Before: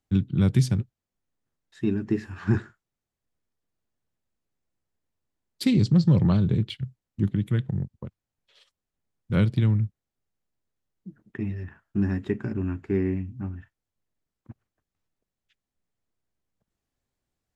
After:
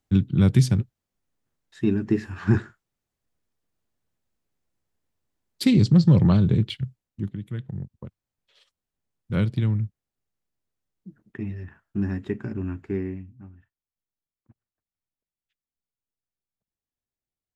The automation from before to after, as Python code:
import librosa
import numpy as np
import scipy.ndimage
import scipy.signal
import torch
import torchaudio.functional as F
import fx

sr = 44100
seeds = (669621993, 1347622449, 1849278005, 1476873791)

y = fx.gain(x, sr, db=fx.line((6.82, 3.0), (7.42, -9.0), (8.05, -1.5), (12.87, -1.5), (13.5, -13.0)))